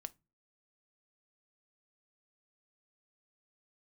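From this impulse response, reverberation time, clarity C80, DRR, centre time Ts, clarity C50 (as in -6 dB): no single decay rate, 36.0 dB, 12.5 dB, 2 ms, 25.5 dB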